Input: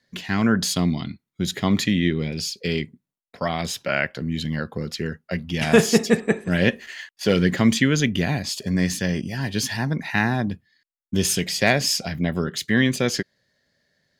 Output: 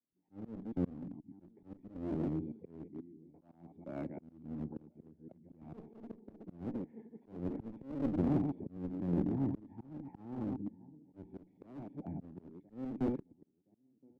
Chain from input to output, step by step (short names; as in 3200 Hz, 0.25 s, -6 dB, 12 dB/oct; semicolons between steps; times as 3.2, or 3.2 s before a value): reverse delay 0.12 s, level -6.5 dB; vocal tract filter u; darkening echo 1.02 s, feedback 46%, low-pass 1800 Hz, level -23 dB; one-sided clip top -34 dBFS; auto swell 0.565 s; three-band expander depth 40%; gain +1.5 dB